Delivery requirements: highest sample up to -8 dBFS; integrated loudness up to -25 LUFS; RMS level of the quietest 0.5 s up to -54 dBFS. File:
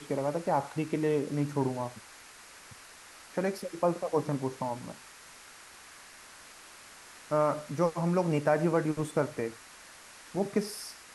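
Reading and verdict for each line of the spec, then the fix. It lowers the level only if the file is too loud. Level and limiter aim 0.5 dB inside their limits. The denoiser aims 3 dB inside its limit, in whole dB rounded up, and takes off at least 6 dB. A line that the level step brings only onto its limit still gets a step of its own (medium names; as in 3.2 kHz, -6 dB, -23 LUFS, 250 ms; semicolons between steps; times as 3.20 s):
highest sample -13.0 dBFS: pass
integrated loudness -31.0 LUFS: pass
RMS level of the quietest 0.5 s -52 dBFS: fail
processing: noise reduction 6 dB, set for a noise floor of -52 dBFS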